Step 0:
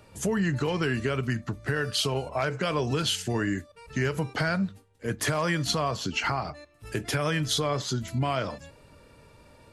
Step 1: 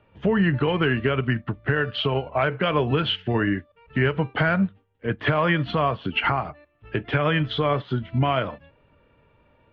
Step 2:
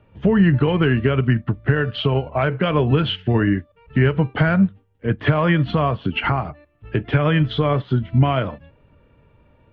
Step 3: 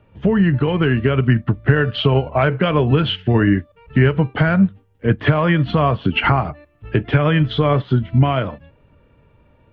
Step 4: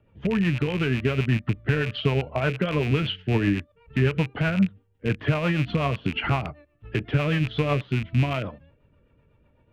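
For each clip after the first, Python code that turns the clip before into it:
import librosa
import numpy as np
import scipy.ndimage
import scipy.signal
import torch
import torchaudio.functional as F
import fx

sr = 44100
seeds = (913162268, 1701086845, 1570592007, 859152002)

y1 = scipy.signal.sosfilt(scipy.signal.ellip(4, 1.0, 70, 3200.0, 'lowpass', fs=sr, output='sos'), x)
y1 = fx.upward_expand(y1, sr, threshold_db=-49.0, expansion=1.5)
y1 = y1 * librosa.db_to_amplitude(7.5)
y2 = fx.low_shelf(y1, sr, hz=330.0, db=8.5)
y3 = fx.rider(y2, sr, range_db=4, speed_s=0.5)
y3 = y3 * librosa.db_to_amplitude(2.5)
y4 = fx.rattle_buzz(y3, sr, strikes_db=-21.0, level_db=-13.0)
y4 = fx.rotary(y4, sr, hz=8.0)
y4 = y4 * librosa.db_to_amplitude(-6.5)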